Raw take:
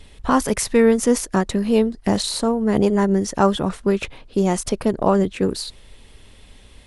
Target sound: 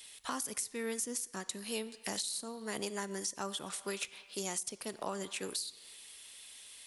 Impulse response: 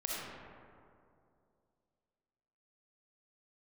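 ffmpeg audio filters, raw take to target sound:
-filter_complex "[0:a]aderivative,asplit=2[s0][s1];[1:a]atrim=start_sample=2205,asetrate=79380,aresample=44100,lowshelf=f=380:g=-11.5[s2];[s1][s2]afir=irnorm=-1:irlink=0,volume=0.211[s3];[s0][s3]amix=inputs=2:normalize=0,acrossover=split=360[s4][s5];[s5]acompressor=threshold=0.00891:ratio=8[s6];[s4][s6]amix=inputs=2:normalize=0,volume=1.78"

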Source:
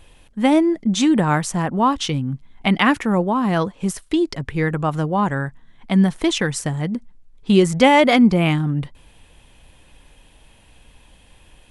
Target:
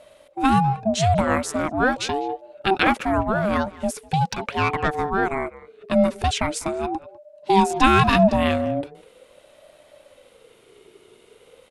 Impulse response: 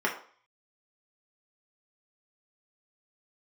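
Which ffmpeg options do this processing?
-filter_complex "[0:a]asplit=2[s0][s1];[s1]adelay=200,highpass=300,lowpass=3400,asoftclip=type=hard:threshold=0.282,volume=0.126[s2];[s0][s2]amix=inputs=2:normalize=0,asplit=3[s3][s4][s5];[s3]afade=t=out:st=4.2:d=0.02[s6];[s4]asplit=2[s7][s8];[s8]highpass=f=720:p=1,volume=5.62,asoftclip=type=tanh:threshold=0.355[s9];[s7][s9]amix=inputs=2:normalize=0,lowpass=f=5000:p=1,volume=0.501,afade=t=in:st=4.2:d=0.02,afade=t=out:st=4.87:d=0.02[s10];[s5]afade=t=in:st=4.87:d=0.02[s11];[s6][s10][s11]amix=inputs=3:normalize=0,aeval=exprs='val(0)*sin(2*PI*500*n/s+500*0.2/0.41*sin(2*PI*0.41*n/s))':c=same"

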